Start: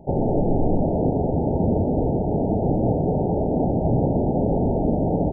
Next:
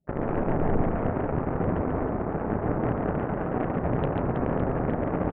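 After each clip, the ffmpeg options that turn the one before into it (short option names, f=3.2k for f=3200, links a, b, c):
-af "afftdn=nr=20:nf=-35,aeval=exprs='0.398*(cos(1*acos(clip(val(0)/0.398,-1,1)))-cos(1*PI/2))+0.0631*(cos(7*acos(clip(val(0)/0.398,-1,1)))-cos(7*PI/2))':c=same,aecho=1:1:140|322|558.6|866.2|1266:0.631|0.398|0.251|0.158|0.1,volume=-6.5dB"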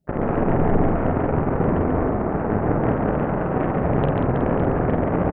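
-filter_complex "[0:a]asplit=2[a][b];[b]adelay=47,volume=-5dB[c];[a][c]amix=inputs=2:normalize=0,volume=5dB"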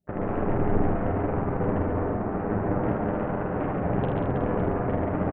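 -af "aecho=1:1:10|79:0.562|0.501,volume=-7.5dB"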